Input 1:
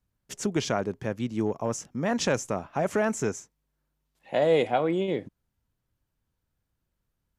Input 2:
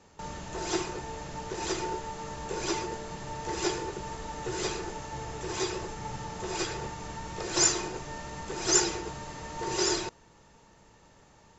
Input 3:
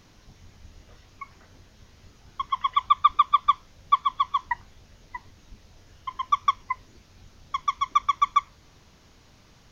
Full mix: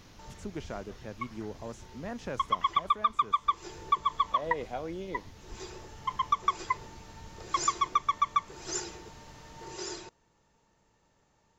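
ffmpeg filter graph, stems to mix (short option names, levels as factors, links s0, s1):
-filter_complex "[0:a]acrossover=split=2600[s0][s1];[s1]acompressor=threshold=0.01:ratio=4:attack=1:release=60[s2];[s0][s2]amix=inputs=2:normalize=0,volume=0.251,asplit=2[s3][s4];[1:a]volume=0.266[s5];[2:a]volume=1.19[s6];[s4]apad=whole_len=510700[s7];[s5][s7]sidechaincompress=threshold=0.00224:ratio=4:attack=16:release=427[s8];[s3][s6]amix=inputs=2:normalize=0,acompressor=threshold=0.0708:ratio=6,volume=1[s9];[s8][s9]amix=inputs=2:normalize=0"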